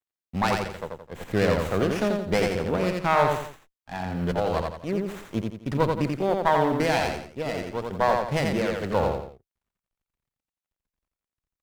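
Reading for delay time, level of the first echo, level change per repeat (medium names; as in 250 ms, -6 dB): 86 ms, -3.5 dB, -8.5 dB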